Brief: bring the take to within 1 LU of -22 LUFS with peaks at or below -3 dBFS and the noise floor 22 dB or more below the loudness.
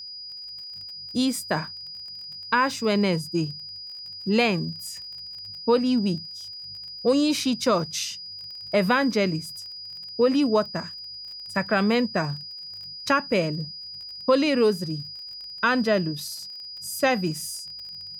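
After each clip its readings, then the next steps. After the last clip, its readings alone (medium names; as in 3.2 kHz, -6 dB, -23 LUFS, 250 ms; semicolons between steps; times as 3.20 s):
tick rate 25 per s; steady tone 4.9 kHz; tone level -36 dBFS; loudness -26.0 LUFS; peak level -8.0 dBFS; loudness target -22.0 LUFS
-> de-click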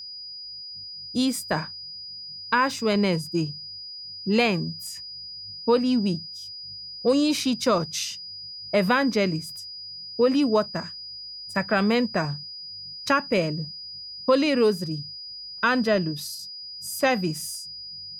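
tick rate 0.11 per s; steady tone 4.9 kHz; tone level -36 dBFS
-> band-stop 4.9 kHz, Q 30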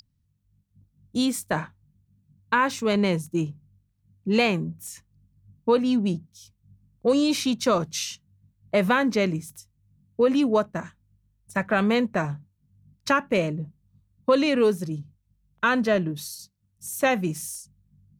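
steady tone not found; loudness -24.5 LUFS; peak level -8.0 dBFS; loudness target -22.0 LUFS
-> trim +2.5 dB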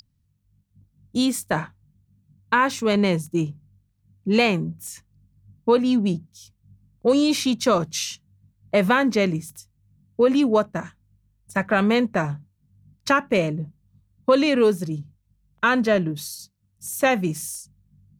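loudness -22.0 LUFS; peak level -5.5 dBFS; noise floor -68 dBFS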